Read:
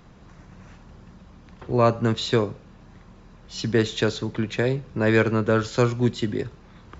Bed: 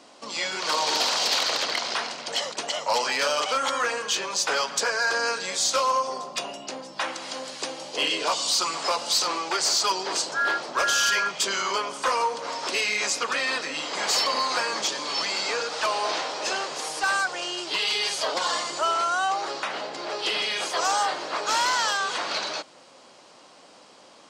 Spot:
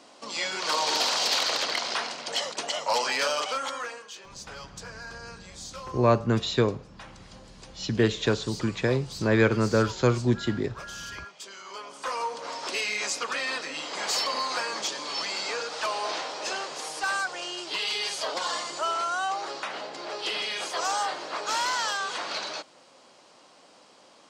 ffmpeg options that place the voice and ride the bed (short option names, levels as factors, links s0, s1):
-filter_complex "[0:a]adelay=4250,volume=0.794[s0];[1:a]volume=3.98,afade=t=out:st=3.19:d=0.91:silence=0.158489,afade=t=in:st=11.64:d=0.81:silence=0.211349[s1];[s0][s1]amix=inputs=2:normalize=0"